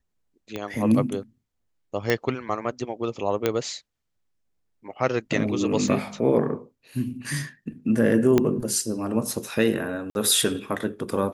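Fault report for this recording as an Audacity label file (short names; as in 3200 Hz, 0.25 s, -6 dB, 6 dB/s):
0.560000	0.560000	pop -17 dBFS
2.100000	2.100000	pop -8 dBFS
3.460000	3.460000	pop -8 dBFS
5.880000	5.880000	gap 2.3 ms
8.380000	8.380000	pop -7 dBFS
10.100000	10.150000	gap 51 ms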